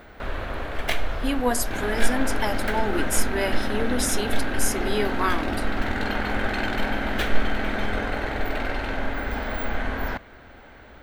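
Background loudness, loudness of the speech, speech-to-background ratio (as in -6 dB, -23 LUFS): -28.5 LUFS, -27.5 LUFS, 1.0 dB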